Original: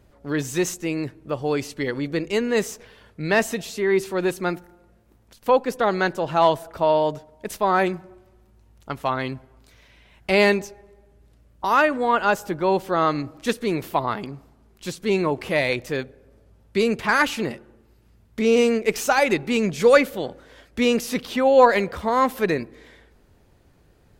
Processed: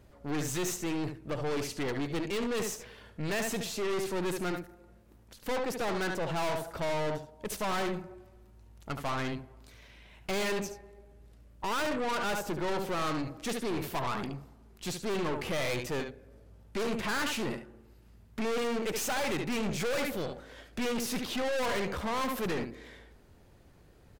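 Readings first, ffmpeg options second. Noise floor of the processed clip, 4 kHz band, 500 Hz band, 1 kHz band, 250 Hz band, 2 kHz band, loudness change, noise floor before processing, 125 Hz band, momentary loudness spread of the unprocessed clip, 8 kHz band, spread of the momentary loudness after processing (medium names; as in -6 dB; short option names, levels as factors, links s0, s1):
-58 dBFS, -6.0 dB, -12.5 dB, -12.5 dB, -9.5 dB, -11.0 dB, -11.5 dB, -57 dBFS, -6.5 dB, 15 LU, -4.0 dB, 11 LU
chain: -filter_complex "[0:a]asplit=2[s0][s1];[s1]aecho=0:1:72:0.282[s2];[s0][s2]amix=inputs=2:normalize=0,aeval=exprs='(tanh(31.6*val(0)+0.45)-tanh(0.45))/31.6':c=same"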